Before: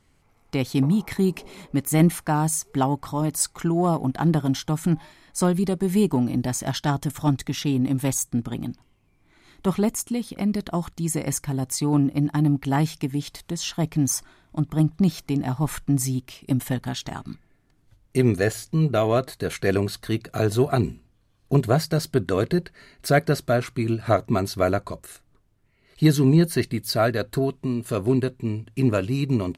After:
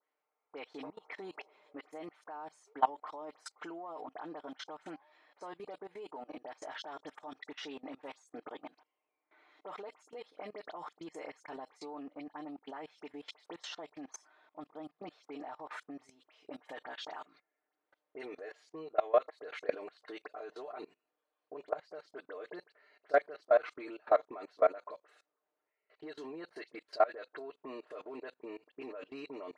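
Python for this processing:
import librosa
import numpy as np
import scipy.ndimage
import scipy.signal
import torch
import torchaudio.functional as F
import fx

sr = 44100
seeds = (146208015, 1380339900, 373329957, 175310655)

y = fx.rider(x, sr, range_db=10, speed_s=0.5)
y = scipy.signal.sosfilt(scipy.signal.butter(4, 480.0, 'highpass', fs=sr, output='sos'), y)
y = fx.spacing_loss(y, sr, db_at_10k=35)
y = y + 0.53 * np.pad(y, (int(6.6 * sr / 1000.0), 0))[:len(y)]
y = fx.dispersion(y, sr, late='highs', ms=55.0, hz=2900.0)
y = fx.level_steps(y, sr, step_db=22)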